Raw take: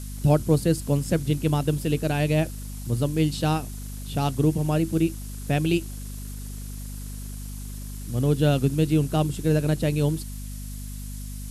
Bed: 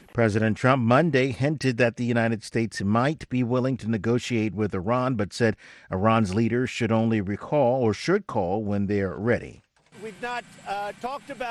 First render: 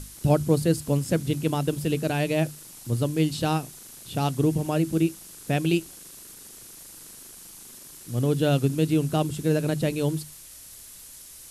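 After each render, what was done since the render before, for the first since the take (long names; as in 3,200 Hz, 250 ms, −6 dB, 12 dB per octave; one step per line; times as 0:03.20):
mains-hum notches 50/100/150/200/250 Hz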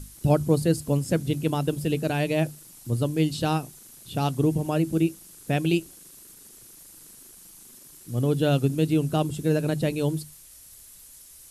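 broadband denoise 6 dB, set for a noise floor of −46 dBFS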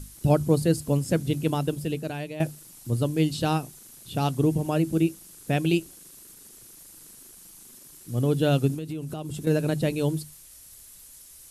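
0:01.53–0:02.40: fade out, to −13.5 dB
0:08.74–0:09.47: downward compressor 10 to 1, threshold −29 dBFS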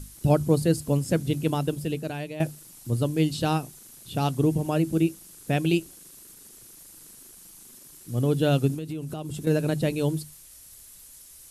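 no processing that can be heard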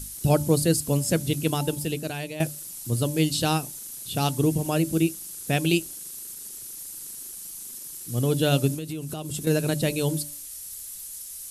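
high-shelf EQ 3,200 Hz +11 dB
hum removal 291.9 Hz, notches 3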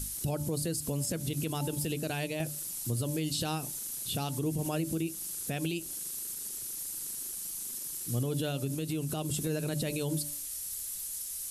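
downward compressor 5 to 1, threshold −24 dBFS, peak gain reduction 9 dB
brickwall limiter −23 dBFS, peak gain reduction 9 dB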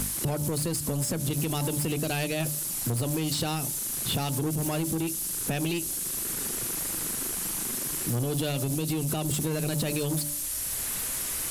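leveller curve on the samples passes 2
multiband upward and downward compressor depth 70%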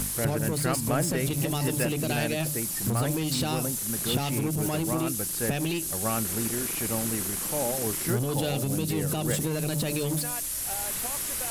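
mix in bed −9.5 dB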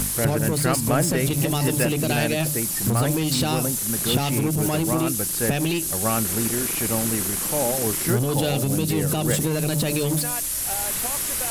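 level +5.5 dB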